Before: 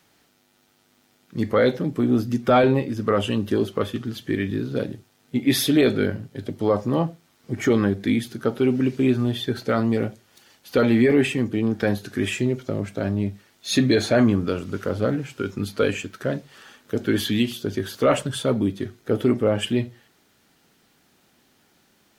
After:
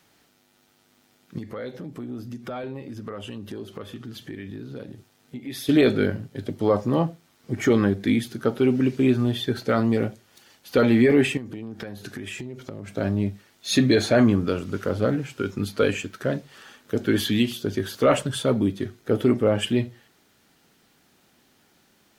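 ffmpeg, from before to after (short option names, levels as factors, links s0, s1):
-filter_complex "[0:a]asettb=1/sr,asplit=3[s0][s1][s2];[s0]atrim=end=1.384[s3];[s1]atrim=start=1.38:end=5.69,asetpts=PTS-STARTPTS,afade=t=in:d=0.004:c=qsin,afade=t=out:st=4.306:d=0.004:c=qsin,acompressor=threshold=0.0158:ratio=3:attack=3.2:release=140:knee=1:detection=peak[s4];[s2]atrim=start=5.686[s5];[s3][s4]acrossfade=d=0.004:c1=hsin:c2=qsin[s6];[s6][s5]acrossfade=d=0.004:c1=qsin:c2=hsin,asettb=1/sr,asplit=3[s7][s8][s9];[s7]atrim=end=11.374[s10];[s8]atrim=start=11.37:end=12.92,asetpts=PTS-STARTPTS,afade=t=in:d=0.004:c=qsin,afade=t=out:st=1.546:d=0.004:c=qsin,acompressor=threshold=0.0316:ratio=16:attack=3.2:release=140:knee=1:detection=peak[s11];[s9]atrim=start=12.916[s12];[s10][s11]acrossfade=d=0.004:c1=hsin:c2=qsin[s13];[s13][s12]acrossfade=d=0.004:c1=qsin:c2=hsin"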